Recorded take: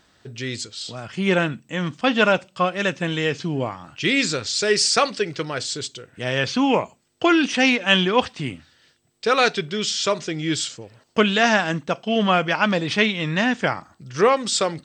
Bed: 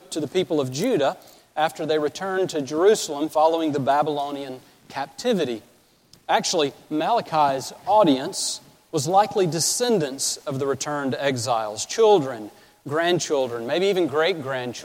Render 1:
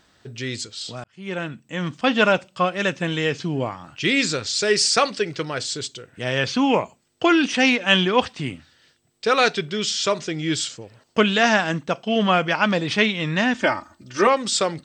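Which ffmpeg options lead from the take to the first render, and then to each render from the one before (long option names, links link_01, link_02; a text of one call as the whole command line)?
ffmpeg -i in.wav -filter_complex "[0:a]asettb=1/sr,asplit=3[link_01][link_02][link_03];[link_01]atrim=end=13.544[link_04];[link_02]atrim=start=13.54:end=14.27,asetpts=PTS-STARTPTS,afade=type=in:duration=0.004:curve=qsin,afade=type=out:start_time=0.726:duration=0.004:curve=qsin,aecho=1:1:3.3:0.88,atrim=end_sample=32193[link_05];[link_03]atrim=start=14.266[link_06];[link_04][link_05]acrossfade=duration=0.004:curve1=hsin:curve2=qsin[link_07];[link_07][link_06]acrossfade=duration=0.004:curve1=qsin:curve2=hsin,asplit=2[link_08][link_09];[link_08]atrim=end=1.04,asetpts=PTS-STARTPTS,afade=type=out:start_time=1.036:duration=0.004:curve=hsin[link_10];[link_09]atrim=start=1.04,asetpts=PTS-STARTPTS,afade=type=in:duration=0.9[link_11];[link_10][link_11]concat=n=2:v=0:a=1" out.wav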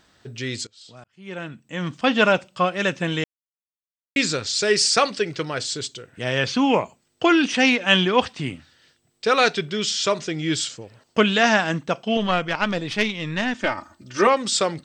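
ffmpeg -i in.wav -filter_complex "[0:a]asettb=1/sr,asplit=3[link_01][link_02][link_03];[link_01]atrim=end=12.174[link_04];[link_02]atrim=start=12.17:end=13.78,asetpts=PTS-STARTPTS,afade=type=in:duration=0.004:curve=qsin,afade=type=out:start_time=1.606:duration=0.004:curve=qsin,aeval=exprs='(tanh(2.51*val(0)+0.75)-tanh(0.75))/2.51':channel_layout=same[link_05];[link_03]atrim=start=13.776[link_06];[link_04][link_05]acrossfade=duration=0.004:curve1=hsin:curve2=qsin[link_07];[link_07][link_06]acrossfade=duration=0.004:curve1=qsin:curve2=hsin,asplit=4[link_08][link_09][link_10][link_11];[link_08]atrim=end=0.67,asetpts=PTS-STARTPTS,afade=type=out:start_time=0.666:duration=0.004:curve=hsin:silence=0.0944061[link_12];[link_09]atrim=start=0.67:end=3.24,asetpts=PTS-STARTPTS,afade=type=in:duration=1.32:silence=0.0944061,afade=type=out:start_time=2.566:duration=0.004:curve=hsin[link_13];[link_10]atrim=start=3.24:end=4.16,asetpts=PTS-STARTPTS,volume=0[link_14];[link_11]atrim=start=4.16,asetpts=PTS-STARTPTS,afade=type=in:duration=0.004:curve=hsin[link_15];[link_12][link_13][link_14][link_15]concat=n=4:v=0:a=1" out.wav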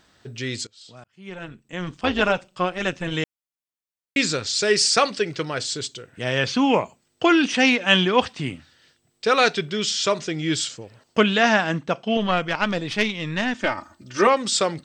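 ffmpeg -i in.wav -filter_complex "[0:a]asplit=3[link_01][link_02][link_03];[link_01]afade=type=out:start_time=1.29:duration=0.02[link_04];[link_02]tremolo=f=180:d=0.667,afade=type=in:start_time=1.29:duration=0.02,afade=type=out:start_time=3.13:duration=0.02[link_05];[link_03]afade=type=in:start_time=3.13:duration=0.02[link_06];[link_04][link_05][link_06]amix=inputs=3:normalize=0,asettb=1/sr,asplit=3[link_07][link_08][link_09];[link_07]atrim=end=11.234[link_10];[link_08]atrim=start=11.23:end=12.37,asetpts=PTS-STARTPTS,afade=type=in:duration=0.004:curve=qsin,afade=type=out:start_time=1.136:duration=0.004:curve=qsin,highshelf=frequency=8500:gain=-11.5[link_11];[link_09]atrim=start=12.366[link_12];[link_10][link_11]acrossfade=duration=0.004:curve1=hsin:curve2=qsin[link_13];[link_13][link_12]acrossfade=duration=0.004:curve1=qsin:curve2=hsin" out.wav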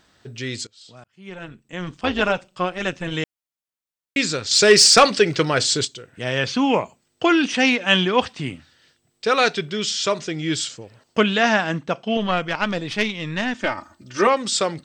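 ffmpeg -i in.wav -filter_complex "[0:a]asettb=1/sr,asplit=3[link_01][link_02][link_03];[link_01]atrim=end=4.514[link_04];[link_02]atrim=start=4.51:end=5.85,asetpts=PTS-STARTPTS,afade=type=in:duration=0.004:curve=qsin,afade=type=out:start_time=1.336:duration=0.004:curve=qsin,aeval=exprs='0.596*sin(PI/2*1.58*val(0)/0.596)':channel_layout=same[link_05];[link_03]atrim=start=5.846[link_06];[link_04][link_05]acrossfade=duration=0.004:curve1=hsin:curve2=qsin[link_07];[link_07][link_06]acrossfade=duration=0.004:curve1=qsin:curve2=hsin" out.wav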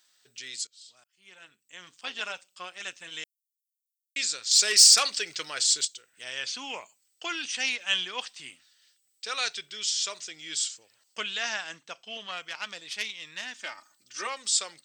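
ffmpeg -i in.wav -af "aderivative" out.wav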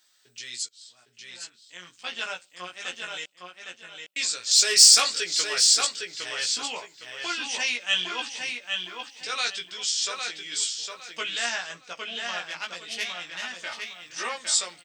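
ffmpeg -i in.wav -filter_complex "[0:a]asplit=2[link_01][link_02];[link_02]adelay=17,volume=-2.5dB[link_03];[link_01][link_03]amix=inputs=2:normalize=0,asplit=2[link_04][link_05];[link_05]adelay=809,lowpass=frequency=4700:poles=1,volume=-4dB,asplit=2[link_06][link_07];[link_07]adelay=809,lowpass=frequency=4700:poles=1,volume=0.29,asplit=2[link_08][link_09];[link_09]adelay=809,lowpass=frequency=4700:poles=1,volume=0.29,asplit=2[link_10][link_11];[link_11]adelay=809,lowpass=frequency=4700:poles=1,volume=0.29[link_12];[link_04][link_06][link_08][link_10][link_12]amix=inputs=5:normalize=0" out.wav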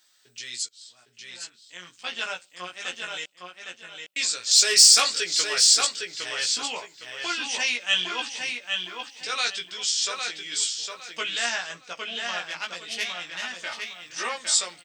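ffmpeg -i in.wav -af "volume=1.5dB,alimiter=limit=-3dB:level=0:latency=1" out.wav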